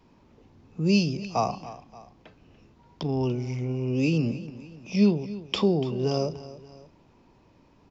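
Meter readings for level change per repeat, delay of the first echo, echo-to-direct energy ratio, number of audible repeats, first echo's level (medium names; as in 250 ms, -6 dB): -6.5 dB, 289 ms, -15.0 dB, 2, -16.0 dB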